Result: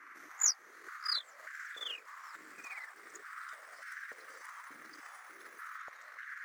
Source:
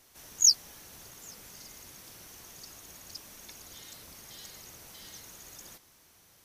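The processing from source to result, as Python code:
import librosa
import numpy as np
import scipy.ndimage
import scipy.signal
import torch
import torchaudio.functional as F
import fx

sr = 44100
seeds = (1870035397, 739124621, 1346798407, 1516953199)

y = fx.pitch_glide(x, sr, semitones=10.5, runs='starting unshifted')
y = fx.echo_pitch(y, sr, ms=472, semitones=-6, count=3, db_per_echo=-6.0)
y = fx.high_shelf(y, sr, hz=2600.0, db=-10.5)
y = fx.dmg_noise_band(y, sr, seeds[0], low_hz=1100.0, high_hz=2100.0, level_db=-48.0)
y = fx.transient(y, sr, attack_db=10, sustain_db=-6)
y = fx.peak_eq(y, sr, hz=6100.0, db=5.0, octaves=1.3)
y = fx.filter_held_highpass(y, sr, hz=3.4, low_hz=300.0, high_hz=1600.0)
y = y * 10.0 ** (-8.0 / 20.0)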